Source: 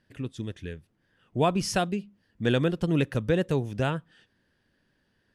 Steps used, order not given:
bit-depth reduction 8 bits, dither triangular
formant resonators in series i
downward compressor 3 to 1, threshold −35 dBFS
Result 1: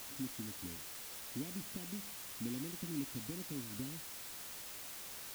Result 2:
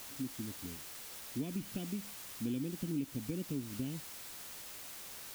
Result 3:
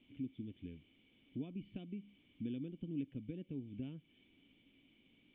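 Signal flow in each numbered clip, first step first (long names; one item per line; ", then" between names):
downward compressor, then formant resonators in series, then bit-depth reduction
formant resonators in series, then bit-depth reduction, then downward compressor
bit-depth reduction, then downward compressor, then formant resonators in series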